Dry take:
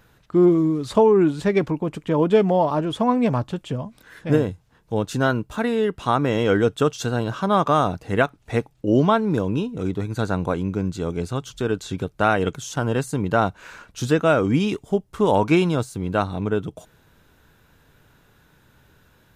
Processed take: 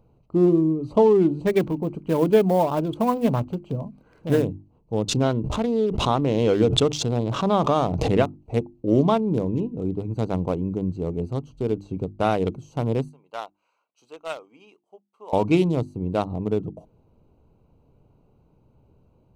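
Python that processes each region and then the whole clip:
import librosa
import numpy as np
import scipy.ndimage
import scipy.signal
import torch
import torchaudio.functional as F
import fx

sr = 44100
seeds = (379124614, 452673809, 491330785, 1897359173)

y = fx.chain(x, sr, fx.block_float(bits=5),
    fx.peak_eq(hz=1600.0, db=13.5, octaves=0.46), at=(1.47, 4.45))
y = fx.chain(y, sr, fx.lowpass(hz=6500.0, slope=12),
    fx.pre_swell(db_per_s=33.0), at=(5.08, 8.23))
y = fx.chain(y, sr, fx.highpass(hz=1200.0, slope=12),
    fx.upward_expand(threshold_db=-43.0, expansion=1.5), at=(13.09, 15.33))
y = fx.wiener(y, sr, points=25)
y = fx.peak_eq(y, sr, hz=1600.0, db=-12.0, octaves=0.79)
y = fx.hum_notches(y, sr, base_hz=50, count=7)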